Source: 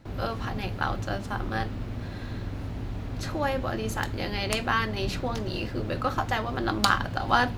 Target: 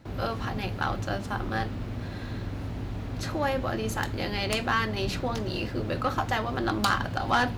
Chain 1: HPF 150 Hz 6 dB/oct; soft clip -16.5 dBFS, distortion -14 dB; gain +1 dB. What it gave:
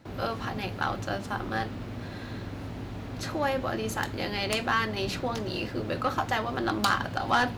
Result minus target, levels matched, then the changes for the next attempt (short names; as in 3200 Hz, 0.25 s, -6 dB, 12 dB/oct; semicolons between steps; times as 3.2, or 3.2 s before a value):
125 Hz band -3.0 dB
change: HPF 42 Hz 6 dB/oct